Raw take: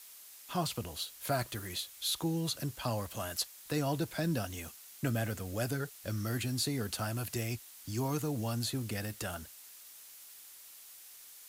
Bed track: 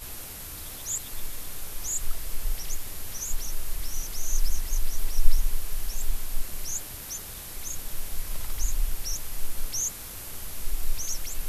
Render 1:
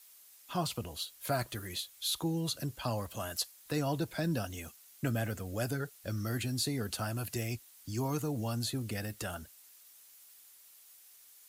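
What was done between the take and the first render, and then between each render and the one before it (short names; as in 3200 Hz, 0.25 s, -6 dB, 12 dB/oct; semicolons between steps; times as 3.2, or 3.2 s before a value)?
denoiser 7 dB, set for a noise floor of -53 dBFS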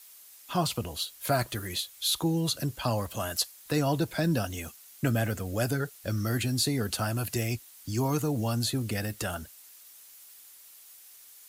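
gain +6 dB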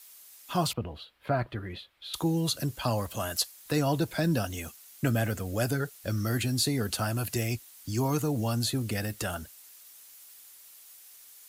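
0.73–2.14 air absorption 440 m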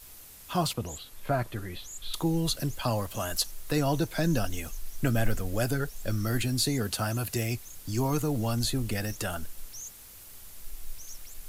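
add bed track -13 dB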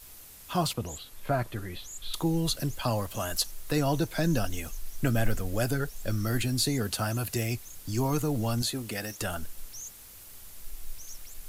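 8.62–9.21 HPF 280 Hz 6 dB/oct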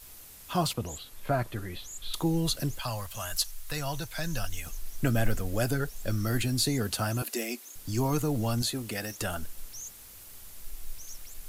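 2.79–4.67 bell 310 Hz -15 dB 2 oct; 7.22–7.76 Chebyshev high-pass 230 Hz, order 5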